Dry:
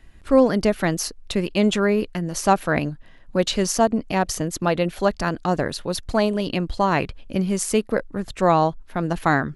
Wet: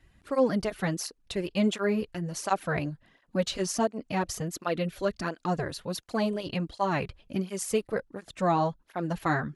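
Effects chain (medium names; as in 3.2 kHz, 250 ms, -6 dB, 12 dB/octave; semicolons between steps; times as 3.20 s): 4.67–5.25 s: peaking EQ 820 Hz -9.5 dB 0.47 oct; cancelling through-zero flanger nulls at 1.4 Hz, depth 4.9 ms; trim -5 dB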